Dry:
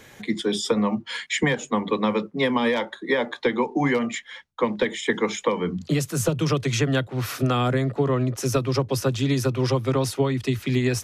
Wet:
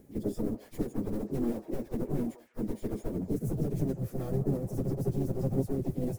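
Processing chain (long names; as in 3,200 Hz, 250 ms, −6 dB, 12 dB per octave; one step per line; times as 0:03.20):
wavefolder on the positive side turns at −23.5 dBFS
log-companded quantiser 4 bits
pitch-shifted copies added −12 semitones −15 dB, +5 semitones −7 dB, +7 semitones −9 dB
drawn EQ curve 380 Hz 0 dB, 1,000 Hz −21 dB, 3,200 Hz −29 dB, 12,000 Hz −12 dB
echo through a band-pass that steps 275 ms, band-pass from 810 Hz, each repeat 1.4 octaves, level −8.5 dB
time stretch by phase vocoder 0.56×
level −2 dB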